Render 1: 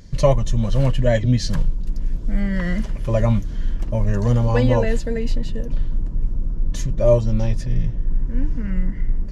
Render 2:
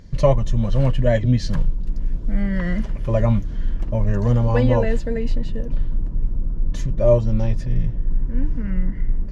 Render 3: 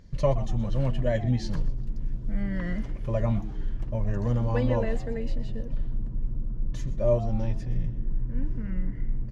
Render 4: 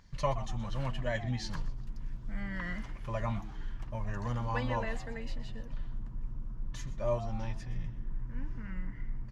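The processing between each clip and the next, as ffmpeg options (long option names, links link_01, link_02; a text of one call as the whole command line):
ffmpeg -i in.wav -af "highshelf=frequency=4500:gain=-10.5" out.wav
ffmpeg -i in.wav -filter_complex "[0:a]asplit=4[link_01][link_02][link_03][link_04];[link_02]adelay=124,afreqshift=96,volume=-16.5dB[link_05];[link_03]adelay=248,afreqshift=192,volume=-25.6dB[link_06];[link_04]adelay=372,afreqshift=288,volume=-34.7dB[link_07];[link_01][link_05][link_06][link_07]amix=inputs=4:normalize=0,volume=-8dB" out.wav
ffmpeg -i in.wav -af "lowshelf=frequency=700:width_type=q:width=1.5:gain=-9" out.wav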